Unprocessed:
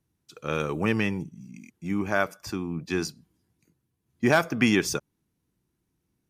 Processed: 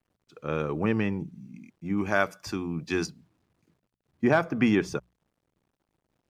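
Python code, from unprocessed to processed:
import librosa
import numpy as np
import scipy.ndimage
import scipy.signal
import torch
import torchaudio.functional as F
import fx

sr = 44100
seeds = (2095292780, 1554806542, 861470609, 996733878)

y = fx.high_shelf(x, sr, hz=2400.0, db=fx.steps((0.0, -11.0), (1.97, 3.0), (3.05, -11.0)))
y = fx.quant_dither(y, sr, seeds[0], bits=12, dither='none')
y = fx.high_shelf(y, sr, hz=8600.0, db=-11.0)
y = fx.hum_notches(y, sr, base_hz=60, count=3)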